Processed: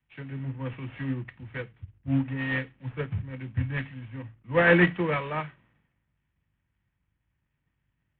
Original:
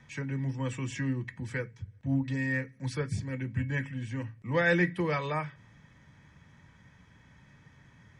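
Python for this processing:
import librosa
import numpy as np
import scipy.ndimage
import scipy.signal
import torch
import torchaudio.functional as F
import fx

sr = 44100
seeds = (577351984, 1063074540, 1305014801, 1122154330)

y = fx.cvsd(x, sr, bps=16000)
y = fx.dmg_buzz(y, sr, base_hz=50.0, harmonics=7, level_db=-62.0, tilt_db=-4, odd_only=False)
y = fx.band_widen(y, sr, depth_pct=100)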